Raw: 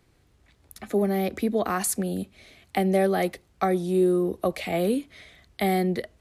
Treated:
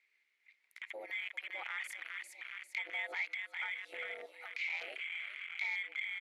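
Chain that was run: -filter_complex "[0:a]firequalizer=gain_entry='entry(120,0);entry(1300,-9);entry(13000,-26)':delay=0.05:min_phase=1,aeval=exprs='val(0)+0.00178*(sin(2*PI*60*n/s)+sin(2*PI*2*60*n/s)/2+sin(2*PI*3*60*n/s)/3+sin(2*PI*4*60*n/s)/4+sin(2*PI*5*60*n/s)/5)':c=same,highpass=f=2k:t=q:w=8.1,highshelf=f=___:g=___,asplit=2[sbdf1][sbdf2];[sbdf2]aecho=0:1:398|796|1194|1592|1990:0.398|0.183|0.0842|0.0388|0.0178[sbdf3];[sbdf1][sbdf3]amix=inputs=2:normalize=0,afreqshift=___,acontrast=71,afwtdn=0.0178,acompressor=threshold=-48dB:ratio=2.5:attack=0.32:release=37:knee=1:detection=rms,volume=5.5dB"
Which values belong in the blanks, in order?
3.4k, 3, 130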